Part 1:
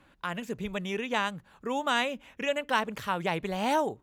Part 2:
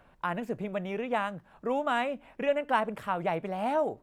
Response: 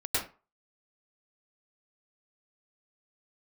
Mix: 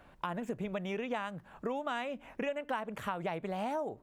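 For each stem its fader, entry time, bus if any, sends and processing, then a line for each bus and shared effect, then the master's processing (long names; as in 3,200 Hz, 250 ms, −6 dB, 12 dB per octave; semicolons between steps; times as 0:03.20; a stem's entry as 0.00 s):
−7.0 dB, 0.00 s, no send, no processing
+1.0 dB, 0.00 s, no send, no processing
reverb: not used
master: downward compressor 6 to 1, threshold −33 dBFS, peak gain reduction 14.5 dB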